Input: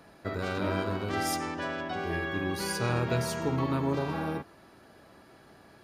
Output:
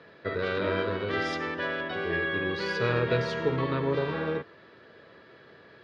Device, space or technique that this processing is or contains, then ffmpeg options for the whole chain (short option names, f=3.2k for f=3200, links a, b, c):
guitar cabinet: -af "highpass=110,equalizer=f=200:t=q:w=4:g=-4,equalizer=f=280:t=q:w=4:g=-5,equalizer=f=470:t=q:w=4:g=8,equalizer=f=780:t=q:w=4:g=-9,equalizer=f=1.8k:t=q:w=4:g=6,equalizer=f=3.5k:t=q:w=4:g=4,lowpass=f=4.3k:w=0.5412,lowpass=f=4.3k:w=1.3066,volume=2dB"